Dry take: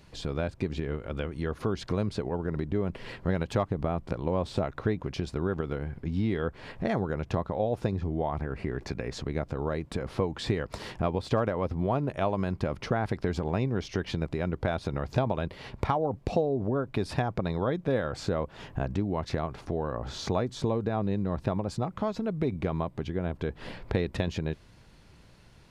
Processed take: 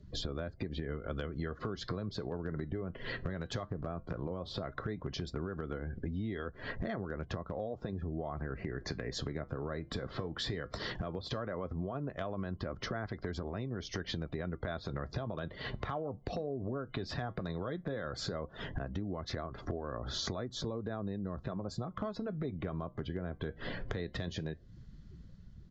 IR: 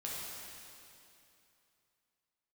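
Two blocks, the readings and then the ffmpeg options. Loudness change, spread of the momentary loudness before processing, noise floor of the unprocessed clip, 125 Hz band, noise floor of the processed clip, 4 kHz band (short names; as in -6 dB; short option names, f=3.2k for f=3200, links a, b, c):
-8.5 dB, 6 LU, -55 dBFS, -8.5 dB, -55 dBFS, -0.5 dB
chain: -filter_complex "[0:a]afftdn=nr=20:nf=-49,superequalizer=9b=0.501:12b=0.398,acrossover=split=280|1100[a][b][c];[c]dynaudnorm=f=120:g=9:m=4dB[d];[a][b][d]amix=inputs=3:normalize=0,alimiter=limit=-19dB:level=0:latency=1:release=35,acompressor=threshold=-40dB:ratio=8,asoftclip=type=hard:threshold=-32dB,flanger=delay=3.1:depth=4.3:regen=-80:speed=0.15:shape=sinusoidal,aresample=16000,aresample=44100,volume=10dB"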